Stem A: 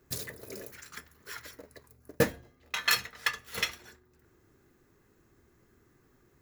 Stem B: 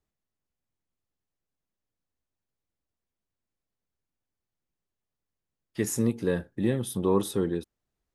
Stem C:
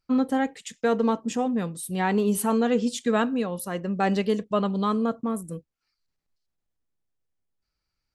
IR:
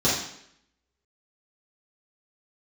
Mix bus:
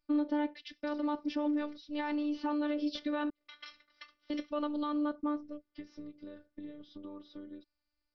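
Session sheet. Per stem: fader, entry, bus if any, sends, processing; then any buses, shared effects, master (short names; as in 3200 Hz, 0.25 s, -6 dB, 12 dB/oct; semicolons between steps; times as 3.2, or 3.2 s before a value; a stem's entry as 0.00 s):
-18.5 dB, 0.75 s, bus A, no send, high shelf 3600 Hz +7 dB
-5.5 dB, 0.00 s, bus A, no send, dry
-3.0 dB, 0.00 s, muted 3.3–4.3, no bus, no send, limiter -19.5 dBFS, peak gain reduction 8.5 dB
bus A: 0.0 dB, notch comb 870 Hz; compressor 8:1, threshold -40 dBFS, peak gain reduction 16 dB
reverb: off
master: steep low-pass 5400 Hz 96 dB/oct; robotiser 295 Hz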